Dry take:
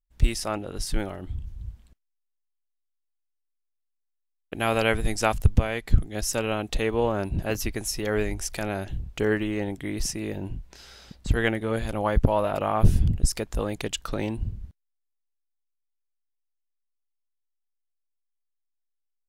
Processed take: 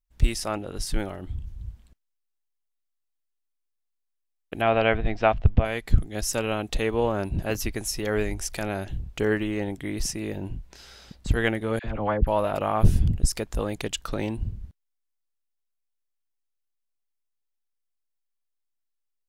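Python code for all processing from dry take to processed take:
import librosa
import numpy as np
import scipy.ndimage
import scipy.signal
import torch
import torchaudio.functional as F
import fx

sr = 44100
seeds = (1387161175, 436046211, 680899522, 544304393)

y = fx.chain(x, sr, fx.lowpass(hz=3300.0, slope=24),
    fx.peak_eq(hz=680.0, db=7.5, octaves=0.3), at=(4.61, 5.65))
y = fx.chain(y, sr, fx.lowpass(hz=2500.0, slope=12),
    fx.dispersion(late='lows', ms=55.0, hz=970.0), at=(11.79, 12.27))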